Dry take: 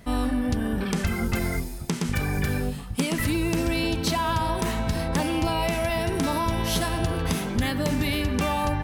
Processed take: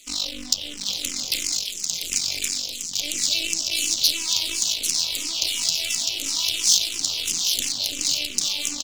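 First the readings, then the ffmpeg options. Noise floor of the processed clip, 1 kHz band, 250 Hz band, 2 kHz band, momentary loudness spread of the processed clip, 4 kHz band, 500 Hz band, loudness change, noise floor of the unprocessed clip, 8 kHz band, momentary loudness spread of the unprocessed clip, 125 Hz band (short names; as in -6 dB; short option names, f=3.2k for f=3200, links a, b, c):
-34 dBFS, -18.5 dB, -17.0 dB, -2.5 dB, 7 LU, +12.5 dB, -17.0 dB, +4.0 dB, -34 dBFS, +15.5 dB, 3 LU, under -20 dB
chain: -filter_complex "[0:a]acrossover=split=300|940[a][b][c];[a]flanger=delay=20:depth=4.8:speed=1.3[d];[b]asoftclip=type=tanh:threshold=-35dB[e];[c]alimiter=limit=-22dB:level=0:latency=1:release=398[f];[d][e][f]amix=inputs=3:normalize=0,aeval=exprs='0.447*(cos(1*acos(clip(val(0)/0.447,-1,1)))-cos(1*PI/2))+0.112*(cos(6*acos(clip(val(0)/0.447,-1,1)))-cos(6*PI/2))':c=same,highpass=f=170:p=1,equalizer=f=290:t=o:w=0.43:g=11,aresample=16000,aresample=44100,highshelf=f=4.8k:g=10.5,aecho=1:1:794:0.596,aeval=exprs='max(val(0),0)':c=same,aexciter=amount=13.4:drive=9.2:freq=2.7k,asplit=2[g][h];[h]afreqshift=-2.9[i];[g][i]amix=inputs=2:normalize=1,volume=-11dB"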